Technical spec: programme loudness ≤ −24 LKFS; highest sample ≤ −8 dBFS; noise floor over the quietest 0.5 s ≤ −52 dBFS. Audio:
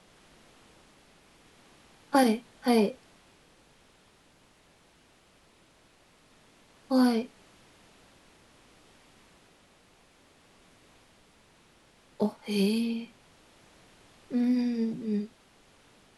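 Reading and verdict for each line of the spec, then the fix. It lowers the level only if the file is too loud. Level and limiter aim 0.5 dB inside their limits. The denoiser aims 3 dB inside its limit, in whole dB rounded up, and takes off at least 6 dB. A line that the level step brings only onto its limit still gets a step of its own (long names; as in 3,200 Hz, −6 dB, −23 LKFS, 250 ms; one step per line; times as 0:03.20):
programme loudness −28.0 LKFS: in spec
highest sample −11.0 dBFS: in spec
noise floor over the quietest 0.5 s −62 dBFS: in spec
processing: no processing needed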